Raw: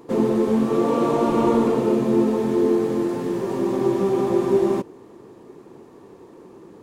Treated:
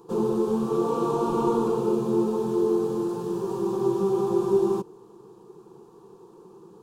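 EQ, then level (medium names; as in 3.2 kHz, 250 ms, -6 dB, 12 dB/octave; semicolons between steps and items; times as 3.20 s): static phaser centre 400 Hz, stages 8; -2.5 dB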